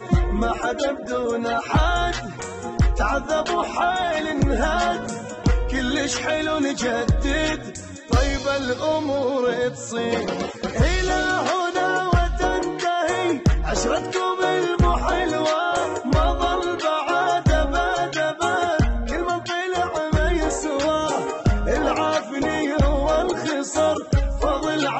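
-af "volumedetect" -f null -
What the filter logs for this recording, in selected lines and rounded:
mean_volume: -21.4 dB
max_volume: -10.1 dB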